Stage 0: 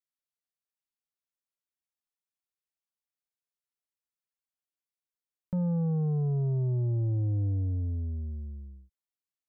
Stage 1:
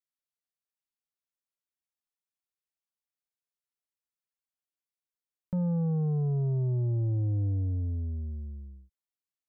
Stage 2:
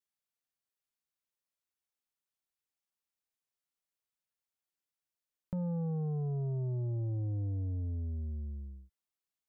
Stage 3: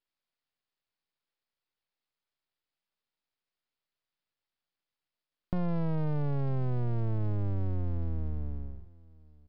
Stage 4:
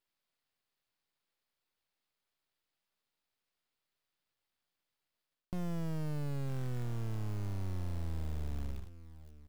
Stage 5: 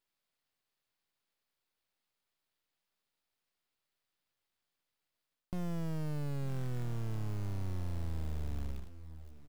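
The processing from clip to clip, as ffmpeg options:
-af anull
-af "adynamicequalizer=threshold=0.00501:dfrequency=690:dqfactor=0.99:tfrequency=690:tqfactor=0.99:attack=5:release=100:ratio=0.375:range=2:mode=boostabove:tftype=bell,acompressor=threshold=-37dB:ratio=2.5"
-af "aresample=11025,aeval=exprs='max(val(0),0)':c=same,aresample=44100,aecho=1:1:961:0.0668,volume=8.5dB"
-af "areverse,acompressor=threshold=-36dB:ratio=12,areverse,acrusher=bits=4:mode=log:mix=0:aa=0.000001,volume=3dB"
-af "aecho=1:1:898:0.112"

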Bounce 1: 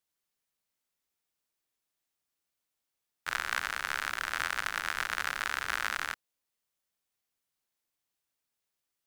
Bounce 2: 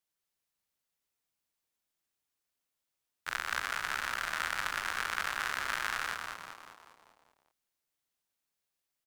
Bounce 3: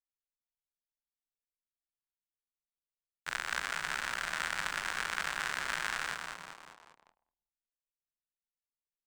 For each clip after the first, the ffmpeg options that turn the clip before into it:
-filter_complex "[0:a]asplit=8[a][b][c][d][e][f][g][h];[b]adelay=196,afreqshift=-95,volume=-5dB[i];[c]adelay=392,afreqshift=-190,volume=-10.5dB[j];[d]adelay=588,afreqshift=-285,volume=-16dB[k];[e]adelay=784,afreqshift=-380,volume=-21.5dB[l];[f]adelay=980,afreqshift=-475,volume=-27.1dB[m];[g]adelay=1176,afreqshift=-570,volume=-32.6dB[n];[h]adelay=1372,afreqshift=-665,volume=-38.1dB[o];[a][i][j][k][l][m][n][o]amix=inputs=8:normalize=0,volume=-2.5dB"
-af "equalizer=f=100:t=o:w=0.33:g=-11,equalizer=f=160:t=o:w=0.33:g=7,equalizer=f=1.25k:t=o:w=0.33:g=-4,equalizer=f=8k:t=o:w=0.33:g=4,equalizer=f=12.5k:t=o:w=0.33:g=-9,anlmdn=0.0000398"

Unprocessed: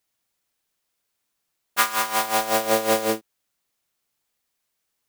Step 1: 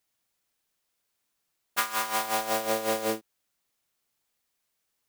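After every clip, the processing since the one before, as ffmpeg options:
-af "acompressor=threshold=-22dB:ratio=6,volume=-1.5dB"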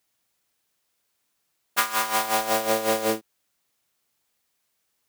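-af "highpass=50,volume=4.5dB"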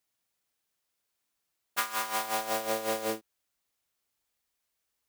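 -af "asubboost=boost=4.5:cutoff=62,volume=-7.5dB"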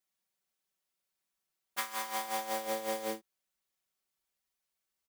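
-af "aecho=1:1:5.3:0.66,volume=-6.5dB"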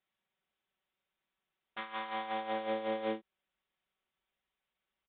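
-filter_complex "[0:a]aresample=8000,aresample=44100,acrossover=split=450[a][b];[b]alimiter=level_in=9dB:limit=-24dB:level=0:latency=1:release=265,volume=-9dB[c];[a][c]amix=inputs=2:normalize=0,volume=4dB"

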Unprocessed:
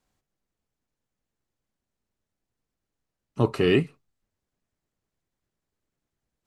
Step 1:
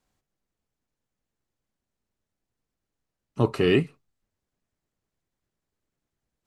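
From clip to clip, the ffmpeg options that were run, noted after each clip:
-af anull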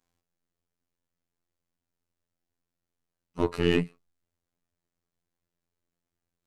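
-af "aeval=exprs='0.376*(cos(1*acos(clip(val(0)/0.376,-1,1)))-cos(1*PI/2))+0.0188*(cos(8*acos(clip(val(0)/0.376,-1,1)))-cos(8*PI/2))':c=same,afftfilt=real='hypot(re,im)*cos(PI*b)':imag='0':win_size=2048:overlap=0.75"

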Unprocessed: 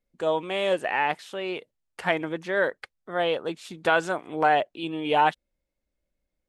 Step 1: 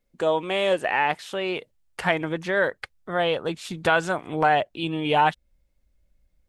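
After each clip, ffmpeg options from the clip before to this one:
-filter_complex "[0:a]asubboost=boost=3.5:cutoff=160,asplit=2[a][b];[b]acompressor=threshold=-31dB:ratio=6,volume=0dB[c];[a][c]amix=inputs=2:normalize=0"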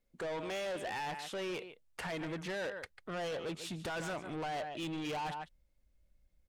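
-af "aecho=1:1:145:0.141,alimiter=limit=-17dB:level=0:latency=1:release=13,asoftclip=type=tanh:threshold=-30.5dB,volume=-5dB"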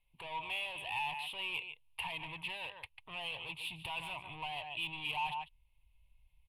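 -af "alimiter=level_in=16dB:limit=-24dB:level=0:latency=1:release=328,volume=-16dB,firequalizer=gain_entry='entry(130,0);entry(200,-17);entry(540,-15);entry(960,8);entry(1400,-20);entry(2600,14);entry(6100,-24);entry(10000,13)':delay=0.05:min_phase=1,adynamicsmooth=sensitivity=7:basefreq=7.4k,volume=3dB"

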